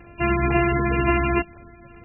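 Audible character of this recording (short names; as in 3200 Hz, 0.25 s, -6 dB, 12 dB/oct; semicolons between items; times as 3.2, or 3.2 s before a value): a buzz of ramps at a fixed pitch in blocks of 128 samples; MP3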